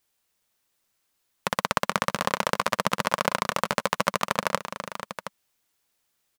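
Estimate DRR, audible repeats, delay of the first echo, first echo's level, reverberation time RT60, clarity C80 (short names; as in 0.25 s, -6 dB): none, 2, 0.45 s, -13.5 dB, none, none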